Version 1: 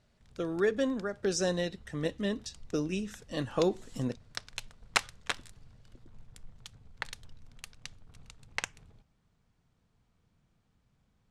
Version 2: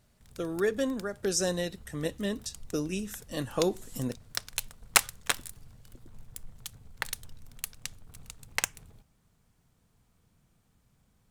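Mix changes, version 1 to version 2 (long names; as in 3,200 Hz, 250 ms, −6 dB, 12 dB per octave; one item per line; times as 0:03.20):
background +3.5 dB
master: remove low-pass filter 5,300 Hz 12 dB per octave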